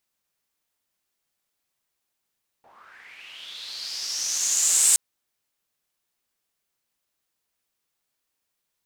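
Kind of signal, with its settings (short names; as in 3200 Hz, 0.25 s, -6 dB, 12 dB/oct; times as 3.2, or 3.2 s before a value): swept filtered noise pink, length 2.32 s bandpass, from 650 Hz, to 8200 Hz, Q 5.8, linear, gain ramp +38 dB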